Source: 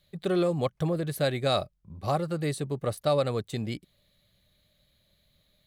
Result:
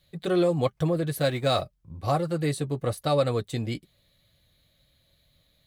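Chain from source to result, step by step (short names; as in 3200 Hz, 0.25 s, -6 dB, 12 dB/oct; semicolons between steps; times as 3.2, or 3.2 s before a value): 1.2–1.62 G.711 law mismatch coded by A; notch comb 200 Hz; gain +3.5 dB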